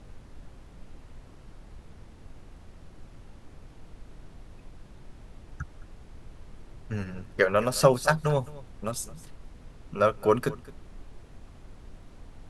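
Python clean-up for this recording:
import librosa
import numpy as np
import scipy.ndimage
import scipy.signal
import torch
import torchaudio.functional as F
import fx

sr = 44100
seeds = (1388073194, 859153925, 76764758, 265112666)

y = fx.noise_reduce(x, sr, print_start_s=1.2, print_end_s=1.7, reduce_db=26.0)
y = fx.fix_echo_inverse(y, sr, delay_ms=215, level_db=-20.0)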